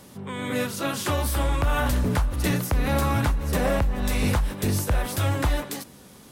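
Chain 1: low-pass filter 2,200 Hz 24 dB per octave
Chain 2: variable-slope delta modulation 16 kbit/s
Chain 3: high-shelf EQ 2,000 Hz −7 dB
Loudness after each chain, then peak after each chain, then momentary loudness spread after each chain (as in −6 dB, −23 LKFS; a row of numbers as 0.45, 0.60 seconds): −25.5, −26.5, −26.0 LKFS; −14.5, −15.0, −15.5 dBFS; 6, 6, 6 LU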